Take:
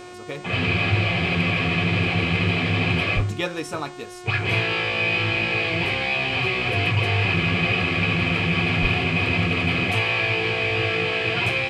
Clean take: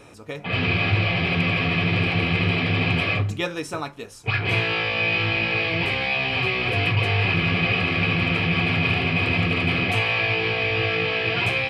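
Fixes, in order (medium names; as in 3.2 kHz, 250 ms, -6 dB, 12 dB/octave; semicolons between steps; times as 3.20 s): de-hum 360.3 Hz, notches 25; 3.15–3.27 s: high-pass 140 Hz 24 dB/octave; 8.81–8.93 s: high-pass 140 Hz 24 dB/octave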